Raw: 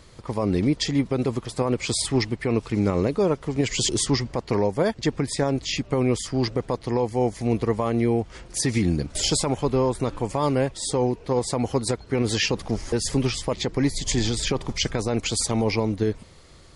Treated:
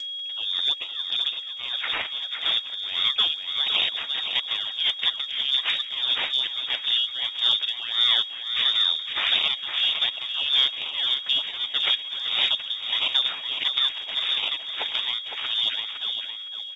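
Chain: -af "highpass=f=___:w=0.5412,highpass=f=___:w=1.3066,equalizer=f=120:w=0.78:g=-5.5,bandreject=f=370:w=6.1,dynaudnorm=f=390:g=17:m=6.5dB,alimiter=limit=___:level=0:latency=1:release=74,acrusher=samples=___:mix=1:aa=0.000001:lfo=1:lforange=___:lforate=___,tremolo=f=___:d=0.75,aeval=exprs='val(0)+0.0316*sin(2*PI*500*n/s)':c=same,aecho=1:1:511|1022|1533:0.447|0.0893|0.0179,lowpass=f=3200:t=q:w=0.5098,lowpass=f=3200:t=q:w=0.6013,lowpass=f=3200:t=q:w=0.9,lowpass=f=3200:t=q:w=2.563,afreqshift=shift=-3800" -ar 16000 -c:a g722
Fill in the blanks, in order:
60, 60, -11dB, 14, 14, 1.4, 1.6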